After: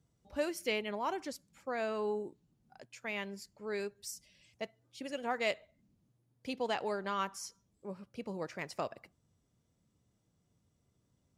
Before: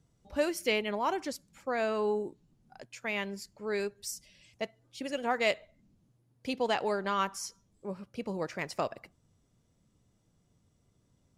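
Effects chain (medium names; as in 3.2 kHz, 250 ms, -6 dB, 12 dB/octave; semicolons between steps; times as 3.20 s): high-pass 43 Hz; trim -5 dB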